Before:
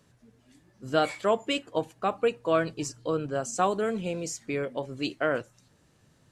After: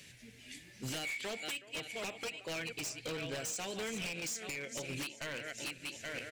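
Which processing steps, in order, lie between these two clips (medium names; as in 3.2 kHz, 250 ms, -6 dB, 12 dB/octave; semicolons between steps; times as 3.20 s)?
backward echo that repeats 413 ms, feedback 51%, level -13 dB; resonant high shelf 1.6 kHz +11.5 dB, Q 3; compression 16:1, threshold -35 dBFS, peak gain reduction 25 dB; speakerphone echo 370 ms, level -20 dB; wavefolder -35 dBFS; trim +1.5 dB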